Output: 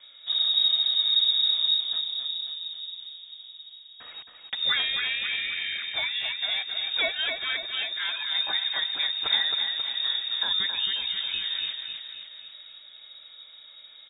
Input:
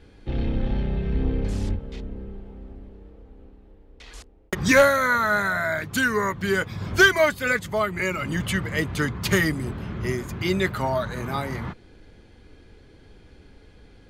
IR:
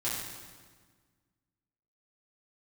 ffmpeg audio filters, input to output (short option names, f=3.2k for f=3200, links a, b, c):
-filter_complex "[0:a]acrossover=split=220|3000[a][b][c];[b]acompressor=threshold=-41dB:ratio=2[d];[a][d][c]amix=inputs=3:normalize=0,aecho=1:1:269|538|807|1076|1345|1614|1883:0.501|0.266|0.141|0.0746|0.0395|0.021|0.0111,lowpass=f=3.2k:t=q:w=0.5098,lowpass=f=3.2k:t=q:w=0.6013,lowpass=f=3.2k:t=q:w=0.9,lowpass=f=3.2k:t=q:w=2.563,afreqshift=-3800"